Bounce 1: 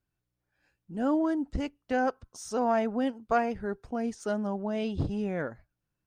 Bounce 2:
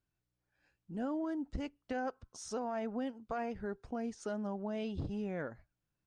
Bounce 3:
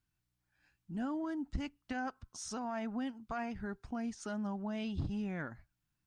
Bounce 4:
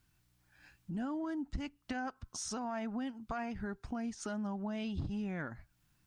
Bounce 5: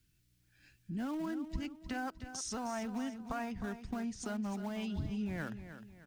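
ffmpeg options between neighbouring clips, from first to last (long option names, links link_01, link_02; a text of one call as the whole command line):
ffmpeg -i in.wav -af "alimiter=limit=-21dB:level=0:latency=1:release=45,acompressor=threshold=-35dB:ratio=2,lowpass=8100,volume=-3dB" out.wav
ffmpeg -i in.wav -af "equalizer=frequency=490:width=1.8:gain=-13,volume=3dB" out.wav
ffmpeg -i in.wav -af "acompressor=threshold=-57dB:ratio=2,volume=11.5dB" out.wav
ffmpeg -i in.wav -filter_complex "[0:a]acrossover=split=280|520|1600[link_01][link_02][link_03][link_04];[link_03]aeval=exprs='val(0)*gte(abs(val(0)),0.00335)':channel_layout=same[link_05];[link_01][link_02][link_05][link_04]amix=inputs=4:normalize=0,aecho=1:1:308|616|924|1232:0.282|0.11|0.0429|0.0167" out.wav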